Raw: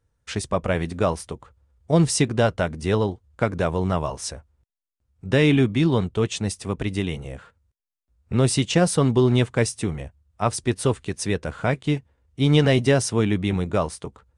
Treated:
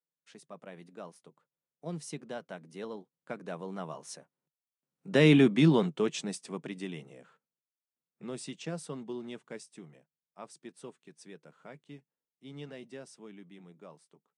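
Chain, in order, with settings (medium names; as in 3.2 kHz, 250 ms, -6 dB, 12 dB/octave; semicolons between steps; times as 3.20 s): Doppler pass-by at 5.51 s, 12 m/s, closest 5 m; elliptic high-pass 150 Hz, stop band 40 dB; trim -1.5 dB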